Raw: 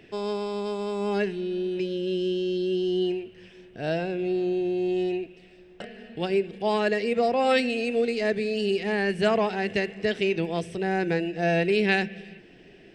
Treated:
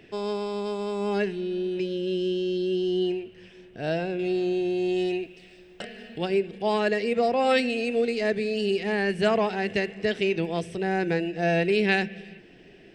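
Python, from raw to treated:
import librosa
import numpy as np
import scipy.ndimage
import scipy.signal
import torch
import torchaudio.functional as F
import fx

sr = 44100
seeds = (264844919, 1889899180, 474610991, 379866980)

y = fx.high_shelf(x, sr, hz=2400.0, db=8.5, at=(4.19, 6.18))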